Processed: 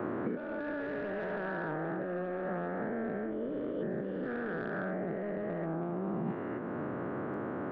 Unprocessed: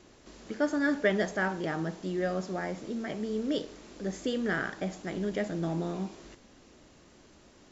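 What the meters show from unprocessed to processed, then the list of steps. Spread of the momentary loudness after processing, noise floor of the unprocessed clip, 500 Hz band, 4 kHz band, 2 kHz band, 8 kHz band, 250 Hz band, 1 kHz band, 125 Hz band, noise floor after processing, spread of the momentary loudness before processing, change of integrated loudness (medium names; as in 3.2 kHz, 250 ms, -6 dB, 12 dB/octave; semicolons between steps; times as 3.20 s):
2 LU, -58 dBFS, -2.0 dB, under -15 dB, -6.0 dB, no reading, -3.0 dB, -1.0 dB, -2.5 dB, -38 dBFS, 10 LU, -4.5 dB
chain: every event in the spectrogram widened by 480 ms; elliptic band-pass 110–1500 Hz, stop band 50 dB; saturation -18 dBFS, distortion -16 dB; compressor with a negative ratio -37 dBFS, ratio -1; reverse echo 375 ms -15.5 dB; three bands compressed up and down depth 100%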